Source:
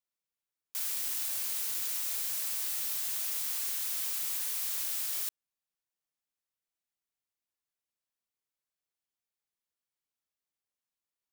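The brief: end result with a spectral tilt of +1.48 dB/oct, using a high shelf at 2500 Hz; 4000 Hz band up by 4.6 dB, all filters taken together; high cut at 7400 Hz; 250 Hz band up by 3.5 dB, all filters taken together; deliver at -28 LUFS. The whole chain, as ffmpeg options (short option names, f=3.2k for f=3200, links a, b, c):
-af "lowpass=7.4k,equalizer=f=250:t=o:g=4.5,highshelf=f=2.5k:g=3,equalizer=f=4k:t=o:g=3.5,volume=8dB"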